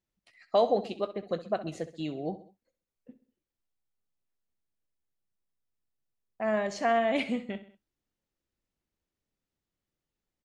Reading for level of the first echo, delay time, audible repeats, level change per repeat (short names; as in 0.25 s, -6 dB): -14.5 dB, 65 ms, 3, -6.0 dB